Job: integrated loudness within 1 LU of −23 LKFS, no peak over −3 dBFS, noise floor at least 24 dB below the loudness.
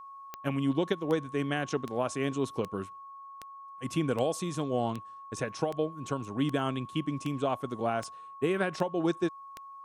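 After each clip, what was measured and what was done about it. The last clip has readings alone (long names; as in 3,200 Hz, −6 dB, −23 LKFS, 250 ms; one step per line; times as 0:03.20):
number of clicks 13; interfering tone 1,100 Hz; level of the tone −44 dBFS; integrated loudness −32.0 LKFS; sample peak −13.5 dBFS; target loudness −23.0 LKFS
→ click removal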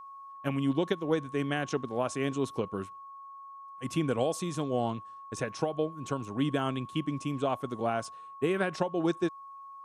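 number of clicks 0; interfering tone 1,100 Hz; level of the tone −44 dBFS
→ notch filter 1,100 Hz, Q 30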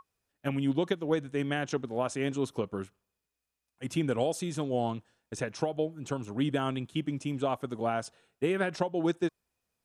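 interfering tone none found; integrated loudness −32.0 LKFS; sample peak −13.5 dBFS; target loudness −23.0 LKFS
→ level +9 dB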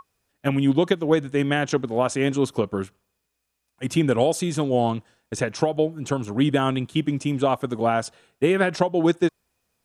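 integrated loudness −23.0 LKFS; sample peak −4.5 dBFS; background noise floor −78 dBFS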